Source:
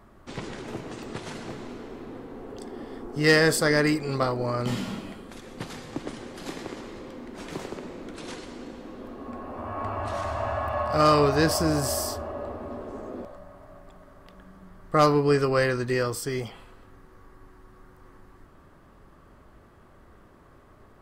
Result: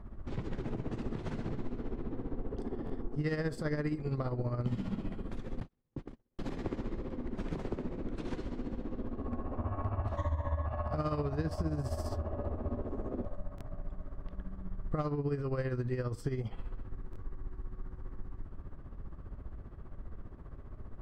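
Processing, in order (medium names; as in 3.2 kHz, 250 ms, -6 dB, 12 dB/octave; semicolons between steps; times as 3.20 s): RIAA curve playback; 5.60–6.39 s: gate -24 dBFS, range -45 dB; 10.17–10.66 s: rippled EQ curve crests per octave 1.1, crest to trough 16 dB; compression 5:1, threshold -27 dBFS, peak gain reduction 15 dB; tremolo 15 Hz, depth 64%; buffer glitch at 2.85/6.34/13.56/17.11 s, samples 1024, times 1; trim -2 dB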